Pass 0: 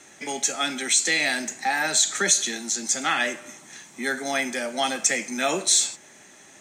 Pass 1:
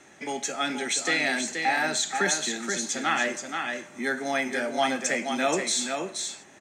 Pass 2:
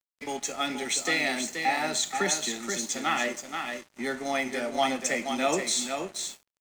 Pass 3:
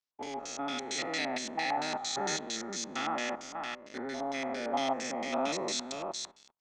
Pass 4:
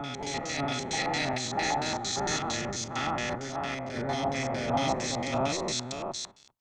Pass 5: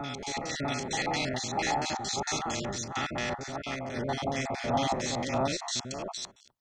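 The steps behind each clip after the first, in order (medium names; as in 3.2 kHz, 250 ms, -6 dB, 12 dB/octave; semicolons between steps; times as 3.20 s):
treble shelf 3.8 kHz -11 dB; delay 478 ms -5.5 dB
band-stop 1.6 kHz, Q 5.9; crossover distortion -43.5 dBFS
spectrogram pixelated in time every 200 ms; LFO low-pass square 4.4 Hz 990–5300 Hz; trim -3.5 dB
octave divider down 1 oct, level 0 dB; on a send: reverse echo 644 ms -4 dB; on the sum: trim +2 dB
random holes in the spectrogram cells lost 22%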